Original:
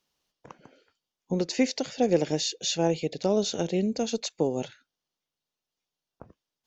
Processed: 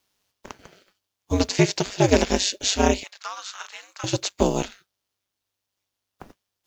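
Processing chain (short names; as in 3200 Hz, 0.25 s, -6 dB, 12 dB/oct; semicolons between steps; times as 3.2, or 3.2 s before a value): spectral whitening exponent 0.6; ring modulator 99 Hz; 3.03–4.04 ladder high-pass 1100 Hz, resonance 65%; gain +8.5 dB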